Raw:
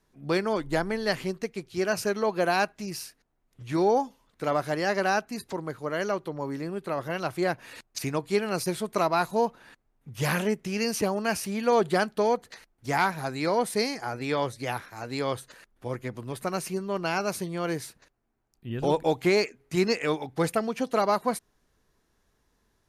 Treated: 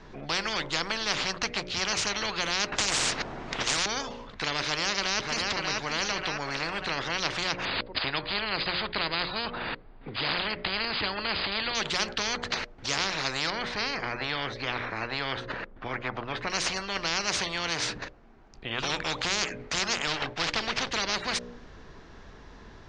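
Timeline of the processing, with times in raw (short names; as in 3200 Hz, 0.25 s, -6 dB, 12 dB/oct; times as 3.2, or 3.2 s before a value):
2.72–3.86 spectral compressor 10:1
4.6–5.56 echo throw 0.59 s, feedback 40%, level -10.5 dB
7.65–11.75 brick-wall FIR low-pass 5000 Hz
13.5–16.5 tape spacing loss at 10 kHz 29 dB
20.07–20.92 running maximum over 9 samples
whole clip: Bessel low-pass 3600 Hz, order 8; notches 60/120/180/240/300/360/420/480/540/600 Hz; spectral compressor 10:1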